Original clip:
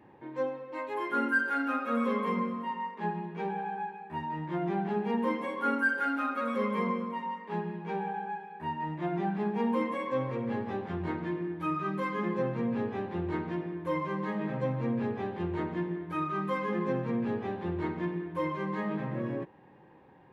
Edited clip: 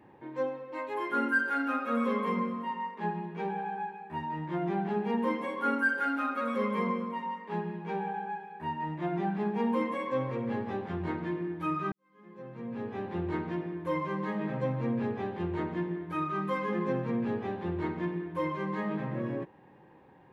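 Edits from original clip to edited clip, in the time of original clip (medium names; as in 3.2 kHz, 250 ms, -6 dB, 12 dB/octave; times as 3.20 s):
11.92–13.12 s: fade in quadratic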